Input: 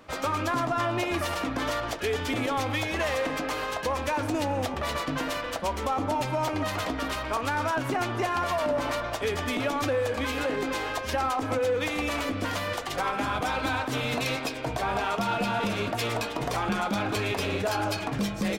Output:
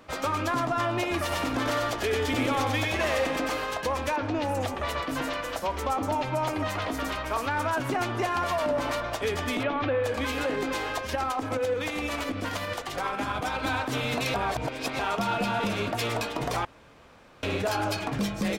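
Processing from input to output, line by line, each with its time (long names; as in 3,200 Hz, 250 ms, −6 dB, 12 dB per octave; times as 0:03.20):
0:01.22–0:03.57: single-tap delay 95 ms −3.5 dB
0:04.16–0:07.80: three-band delay without the direct sound mids, lows, highs 30/260 ms, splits 180/5,000 Hz
0:09.63–0:10.04: low-pass filter 3,400 Hz 24 dB per octave
0:11.07–0:13.66: shaped tremolo saw up 12 Hz, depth 40%
0:14.34–0:14.99: reverse
0:16.65–0:17.43: fill with room tone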